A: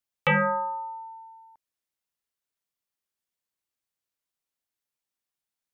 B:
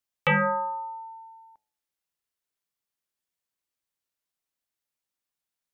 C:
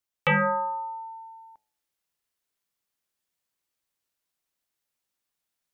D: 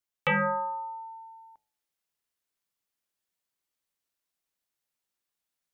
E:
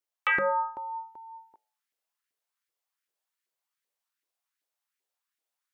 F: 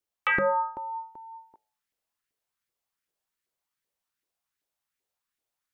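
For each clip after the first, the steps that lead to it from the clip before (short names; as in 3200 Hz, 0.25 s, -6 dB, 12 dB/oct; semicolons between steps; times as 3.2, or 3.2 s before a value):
de-hum 108.6 Hz, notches 8
vocal rider within 4 dB 2 s
notches 50/100/150 Hz; gain -3 dB
LFO high-pass saw up 2.6 Hz 350–2000 Hz; gain -2.5 dB
low shelf 320 Hz +10.5 dB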